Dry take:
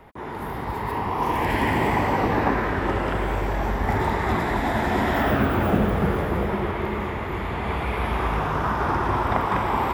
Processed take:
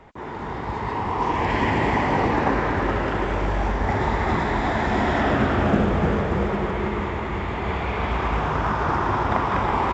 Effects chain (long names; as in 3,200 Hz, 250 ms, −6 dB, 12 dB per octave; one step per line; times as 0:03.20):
single-tap delay 327 ms −6.5 dB
mu-law 128 kbit/s 16,000 Hz